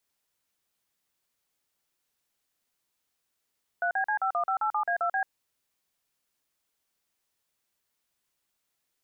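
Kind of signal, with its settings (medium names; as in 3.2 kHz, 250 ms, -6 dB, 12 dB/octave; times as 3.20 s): DTMF "3BC51587A2B", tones 90 ms, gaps 42 ms, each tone -27 dBFS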